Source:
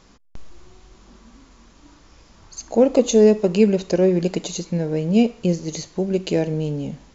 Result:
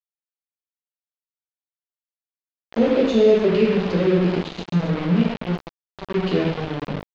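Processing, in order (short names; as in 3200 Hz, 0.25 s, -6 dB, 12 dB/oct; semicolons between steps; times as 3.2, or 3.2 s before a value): flange 0.84 Hz, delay 6.6 ms, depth 8.8 ms, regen +21%; dynamic EQ 890 Hz, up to -5 dB, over -35 dBFS, Q 0.9; 5.13–6.08 resonator 85 Hz, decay 0.81 s, harmonics all, mix 50%; non-linear reverb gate 0.37 s falling, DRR -3 dB; sample gate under -23 dBFS; LPF 3900 Hz 24 dB/oct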